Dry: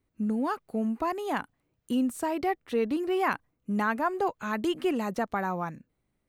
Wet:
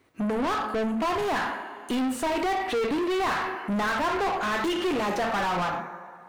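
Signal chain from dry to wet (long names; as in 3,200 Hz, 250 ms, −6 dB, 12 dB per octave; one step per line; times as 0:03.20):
transient designer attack +3 dB, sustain −5 dB
coupled-rooms reverb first 0.49 s, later 1.8 s, from −18 dB, DRR 5.5 dB
mid-hump overdrive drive 34 dB, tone 2,800 Hz, clips at −13.5 dBFS
level −6 dB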